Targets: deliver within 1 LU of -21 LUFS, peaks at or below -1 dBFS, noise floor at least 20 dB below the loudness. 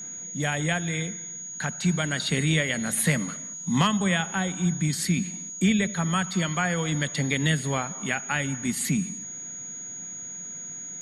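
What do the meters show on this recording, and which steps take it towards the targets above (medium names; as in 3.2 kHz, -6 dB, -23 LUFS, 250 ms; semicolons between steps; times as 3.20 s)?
steady tone 6.7 kHz; tone level -35 dBFS; loudness -26.5 LUFS; peak level -9.0 dBFS; loudness target -21.0 LUFS
-> band-stop 6.7 kHz, Q 30; trim +5.5 dB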